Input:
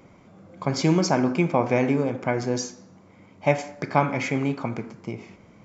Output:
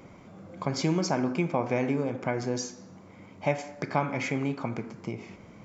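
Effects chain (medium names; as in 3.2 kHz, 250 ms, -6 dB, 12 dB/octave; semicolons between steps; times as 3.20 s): compression 1.5:1, threshold -39 dBFS, peak gain reduction 9.5 dB; trim +2 dB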